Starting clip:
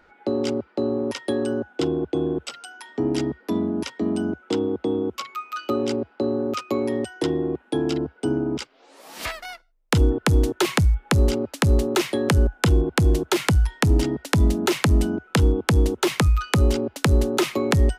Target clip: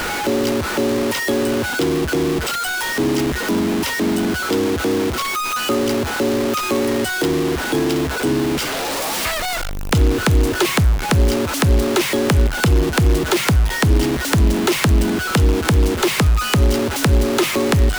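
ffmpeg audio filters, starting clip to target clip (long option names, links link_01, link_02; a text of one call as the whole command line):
ffmpeg -i in.wav -af "aeval=exprs='val(0)+0.5*0.0841*sgn(val(0))':channel_layout=same,acrusher=bits=4:mix=0:aa=0.5,volume=1.5dB" out.wav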